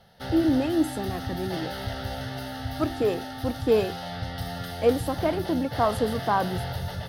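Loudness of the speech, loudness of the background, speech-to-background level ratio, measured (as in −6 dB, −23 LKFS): −27.0 LKFS, −34.0 LKFS, 7.0 dB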